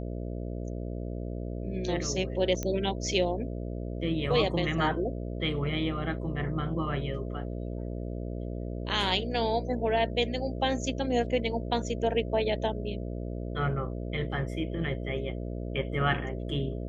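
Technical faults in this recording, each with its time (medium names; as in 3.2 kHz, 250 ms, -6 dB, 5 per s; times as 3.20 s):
buzz 60 Hz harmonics 11 -35 dBFS
2.63 s: pop -18 dBFS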